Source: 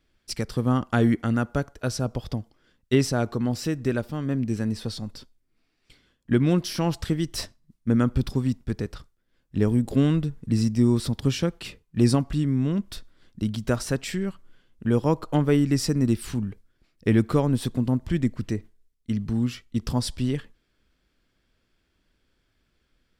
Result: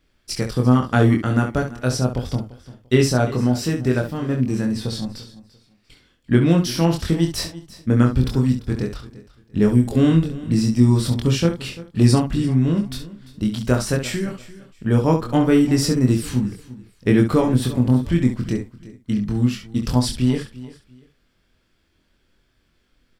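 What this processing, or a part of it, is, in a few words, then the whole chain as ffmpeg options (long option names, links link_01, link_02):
slapback doubling: -filter_complex "[0:a]asplit=3[link_01][link_02][link_03];[link_02]adelay=24,volume=-3dB[link_04];[link_03]adelay=68,volume=-8.5dB[link_05];[link_01][link_04][link_05]amix=inputs=3:normalize=0,aecho=1:1:343|686:0.126|0.0315,volume=3.5dB"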